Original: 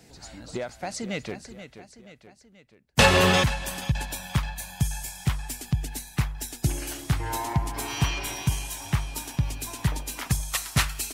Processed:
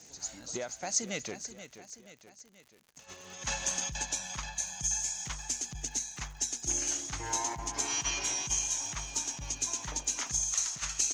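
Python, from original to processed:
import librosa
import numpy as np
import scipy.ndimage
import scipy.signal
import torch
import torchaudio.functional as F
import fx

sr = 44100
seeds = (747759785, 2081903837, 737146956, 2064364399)

y = fx.low_shelf(x, sr, hz=150.0, db=-9.5)
y = fx.over_compress(y, sr, threshold_db=-29.0, ratio=-0.5)
y = fx.ladder_lowpass(y, sr, hz=6700.0, resonance_pct=85)
y = fx.dmg_crackle(y, sr, seeds[0], per_s=110.0, level_db=-51.0)
y = F.gain(torch.from_numpy(y), 5.0).numpy()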